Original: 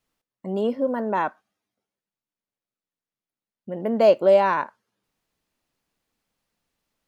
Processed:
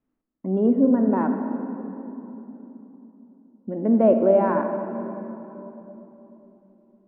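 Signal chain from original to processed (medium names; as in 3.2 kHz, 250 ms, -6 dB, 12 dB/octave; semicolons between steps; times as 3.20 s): low-pass that closes with the level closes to 2.4 kHz, closed at -20 dBFS; FFT filter 160 Hz 0 dB, 260 Hz +11 dB, 480 Hz -2 dB, 1.5 kHz -6 dB, 5.7 kHz -26 dB; on a send: reverberation RT60 3.4 s, pre-delay 37 ms, DRR 5.5 dB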